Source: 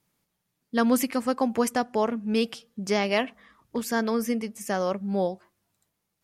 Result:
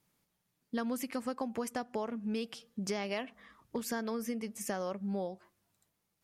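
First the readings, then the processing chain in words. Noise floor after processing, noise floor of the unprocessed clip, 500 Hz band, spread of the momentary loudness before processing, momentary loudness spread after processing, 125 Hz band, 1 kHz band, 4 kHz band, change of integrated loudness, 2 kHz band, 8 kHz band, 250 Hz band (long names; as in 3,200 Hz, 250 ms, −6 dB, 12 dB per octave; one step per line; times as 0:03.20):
−82 dBFS, −80 dBFS, −11.0 dB, 8 LU, 5 LU, −8.0 dB, −11.5 dB, −10.5 dB, −10.5 dB, −11.5 dB, −8.0 dB, −10.5 dB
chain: downward compressor 6 to 1, threshold −31 dBFS, peak gain reduction 13 dB
level −2 dB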